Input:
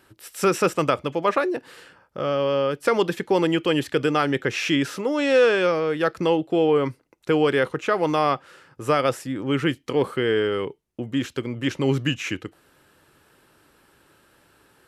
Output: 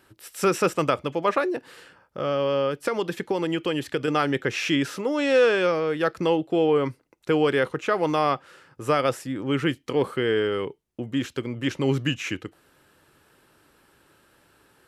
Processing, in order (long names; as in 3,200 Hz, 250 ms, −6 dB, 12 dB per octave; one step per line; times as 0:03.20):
0:02.68–0:04.08: downward compressor, threshold −20 dBFS, peak gain reduction 5.5 dB
level −1.5 dB